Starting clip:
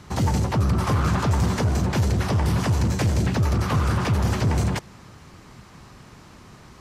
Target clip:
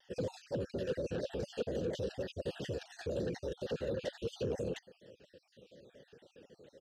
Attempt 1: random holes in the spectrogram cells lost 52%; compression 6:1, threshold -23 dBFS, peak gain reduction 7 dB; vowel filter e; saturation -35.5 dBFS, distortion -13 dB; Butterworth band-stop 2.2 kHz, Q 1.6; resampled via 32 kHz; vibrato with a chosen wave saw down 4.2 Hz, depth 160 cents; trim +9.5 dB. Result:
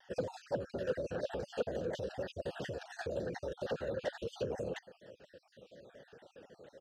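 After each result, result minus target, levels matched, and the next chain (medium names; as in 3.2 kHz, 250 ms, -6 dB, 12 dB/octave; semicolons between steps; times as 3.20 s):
compression: peak gain reduction +7 dB; 1 kHz band +7.0 dB
random holes in the spectrogram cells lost 52%; vowel filter e; saturation -35.5 dBFS, distortion -11 dB; Butterworth band-stop 2.2 kHz, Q 1.6; resampled via 32 kHz; vibrato with a chosen wave saw down 4.2 Hz, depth 160 cents; trim +9.5 dB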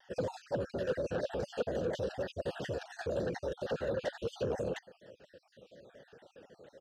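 1 kHz band +6.5 dB
random holes in the spectrogram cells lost 52%; vowel filter e; saturation -35.5 dBFS, distortion -11 dB; Butterworth band-stop 2.2 kHz, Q 1.6; high-order bell 1 kHz -9 dB 1.7 oct; resampled via 32 kHz; vibrato with a chosen wave saw down 4.2 Hz, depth 160 cents; trim +9.5 dB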